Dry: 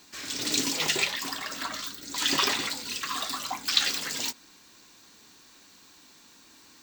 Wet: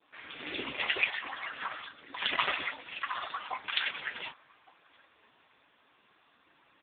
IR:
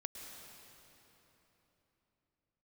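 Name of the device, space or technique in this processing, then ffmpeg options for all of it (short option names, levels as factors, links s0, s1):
telephone: -filter_complex "[0:a]equalizer=f=820:t=o:w=1.3:g=2,asettb=1/sr,asplit=3[s0][s1][s2];[s0]atrim=end=0.664[s3];[s1]atrim=start=0.66:end=1.2,asetpts=PTS-STARTPTS,afade=t=in:d=0.004:c=qsin,afade=t=out:st=0.536:d=0.004:c=qsin,lowpass=9600[s4];[s2]atrim=start=1.196[s5];[s3][s4]acrossfade=d=0.004:c1=hsin:c2=qsin[s6];[s6][s5]acrossfade=d=0.004:c1=qsin:c2=hsin,asplit=2[s7][s8];[s8]adelay=1166,volume=0.0708,highshelf=f=4000:g=-26.2[s9];[s7][s9]amix=inputs=2:normalize=0,adynamicequalizer=threshold=0.0112:dfrequency=2200:dqfactor=0.93:tfrequency=2200:tqfactor=0.93:attack=5:release=100:ratio=0.375:range=2.5:mode=boostabove:tftype=bell,highpass=370,lowpass=3500" -ar 8000 -c:a libopencore_amrnb -b:a 5150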